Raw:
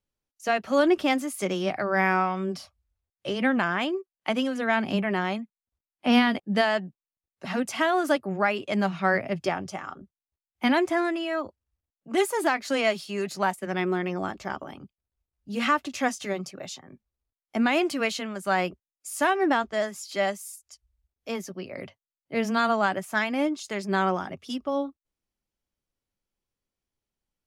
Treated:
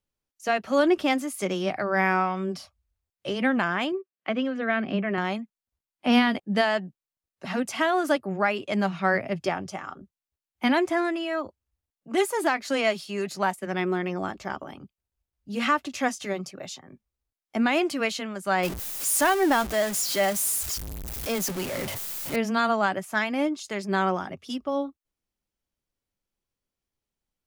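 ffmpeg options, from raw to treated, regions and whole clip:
-filter_complex "[0:a]asettb=1/sr,asplit=3[a][b][c];[a]atrim=end=3.924[d];[b]atrim=start=3.92:end=5.18,asetpts=PTS-STARTPTS,afade=t=in:d=0.004:c=qsin,afade=t=out:st=1.256:d=0.004:c=qsin,highpass=130,lowpass=2.7k,equalizer=f=890:t=o:w=0.2:g=-13.5[e];[c]atrim=start=5.176[f];[d][e]acrossfade=d=0.004:c1=hsin:c2=qsin[g];[g][f]acrossfade=d=0.004:c1=qsin:c2=hsin,asettb=1/sr,asplit=3[h][i][j];[h]atrim=end=18.634[k];[i]atrim=start=18.63:end=22.36,asetpts=PTS-STARTPTS,afade=t=in:d=0.004:c=qsin,afade=t=out:st=3.726:d=0.004:c=qsin,aeval=exprs='val(0)+0.5*0.0335*sgn(val(0))':c=same,highshelf=f=7.6k:g=10[l];[j]atrim=start=22.356[m];[k][l]acrossfade=d=0.004:c1=hsin:c2=qsin[n];[n][m]acrossfade=d=0.004:c1=qsin:c2=hsin"

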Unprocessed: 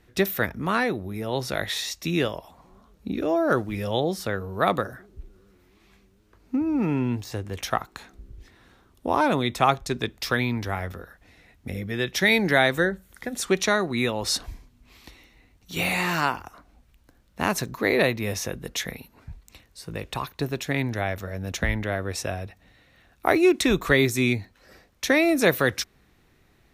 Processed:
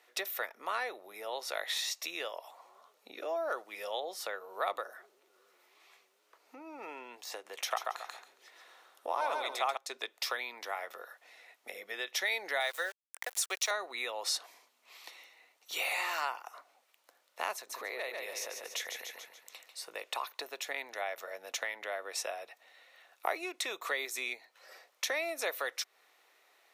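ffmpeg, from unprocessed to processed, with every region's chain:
-filter_complex "[0:a]asettb=1/sr,asplit=3[a][b][c];[a]atrim=end=7.574[d];[b]atrim=start=7.57:end=9.77,asetpts=PTS-STARTPTS,afade=t=in:d=0.004:c=qsin,afade=t=out:st=2.196:d=0.004:c=qsin,bandreject=f=50:t=h:w=6,bandreject=f=100:t=h:w=6,bandreject=f=150:t=h:w=6,bandreject=f=200:t=h:w=6,bandreject=f=250:t=h:w=6,bandreject=f=300:t=h:w=6,bandreject=f=350:t=h:w=6,bandreject=f=400:t=h:w=6,bandreject=f=450:t=h:w=6,aecho=1:1:137|274|411:0.668|0.14|0.0295,atrim=end_sample=97020[e];[c]atrim=start=9.766[f];[d][e]acrossfade=d=0.004:c1=hsin:c2=qsin[g];[g][f]acrossfade=d=0.004:c1=qsin:c2=hsin,asettb=1/sr,asplit=3[h][i][j];[h]atrim=end=12.604[k];[i]atrim=start=12.6:end=13.71,asetpts=PTS-STARTPTS,afade=t=in:d=0.004:c=qsin,afade=t=out:st=1.106:d=0.004:c=qsin,highpass=500,highshelf=f=4.2k:g=7,aeval=exprs='val(0)*gte(abs(val(0)),0.0188)':c=same[l];[j]atrim=start=13.706[m];[k][l]acrossfade=d=0.004:c1=hsin:c2=qsin[n];[n][m]acrossfade=d=0.004:c1=qsin:c2=hsin,asettb=1/sr,asplit=3[o][p][q];[o]atrim=end=17.554[r];[p]atrim=start=17.55:end=19.81,asetpts=PTS-STARTPTS,afade=t=in:d=0.004:c=qsin,afade=t=out:st=2.256:d=0.004:c=qsin,aecho=1:1:144|288|432|576|720:0.398|0.179|0.0806|0.0363|0.0163,atrim=end_sample=99666,acompressor=threshold=-36dB:ratio=2:attack=3.2:release=140:knee=1:detection=peak[s];[q]atrim=start=19.806[t];[r][s]acrossfade=d=0.004:c1=hsin:c2=qsin[u];[u][t]acrossfade=d=0.004:c1=qsin:c2=hsin,acompressor=threshold=-33dB:ratio=2.5,highpass=f=540:w=0.5412,highpass=f=540:w=1.3066,bandreject=f=1.6k:w=13"

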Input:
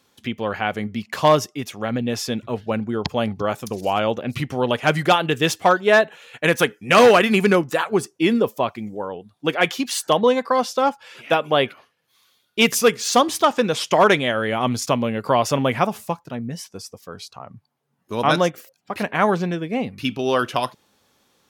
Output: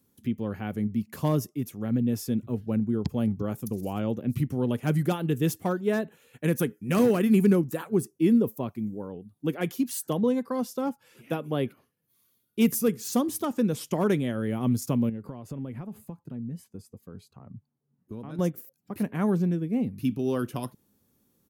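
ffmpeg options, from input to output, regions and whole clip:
-filter_complex "[0:a]asettb=1/sr,asplit=3[a][b][c];[a]atrim=end=15.094[d];[b]atrim=start=15.09:end=18.39,asetpts=PTS-STARTPTS,afade=t=in:d=0.004:c=qsin,afade=t=out:st=3.296:d=0.004:c=qsin,aemphasis=mode=reproduction:type=50kf,bandreject=f=5.6k:w=5.5,acompressor=threshold=-32dB:ratio=3:attack=3.2:release=140:knee=1:detection=peak[e];[c]atrim=start=18.386[f];[d][e]acrossfade=d=0.004:c1=hsin:c2=qsin[g];[g][f]acrossfade=d=0.004:c1=qsin:c2=hsin,firequalizer=gain_entry='entry(230,0);entry(650,-16);entry(3400,-19);entry(12000,1)':delay=0.05:min_phase=1,acrossover=split=460[h][i];[i]acompressor=threshold=-26dB:ratio=6[j];[h][j]amix=inputs=2:normalize=0"

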